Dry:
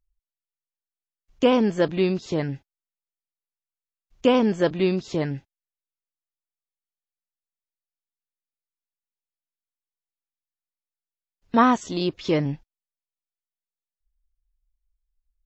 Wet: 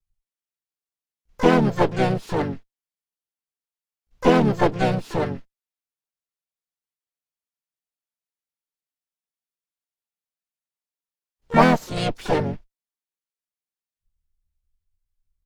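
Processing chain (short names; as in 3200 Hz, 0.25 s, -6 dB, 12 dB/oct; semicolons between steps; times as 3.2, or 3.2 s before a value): minimum comb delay 4.4 ms; dynamic EQ 780 Hz, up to +7 dB, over -37 dBFS, Q 1.5; harmoniser -7 st -2 dB, -3 st -5 dB, +12 st -10 dB; gain -2.5 dB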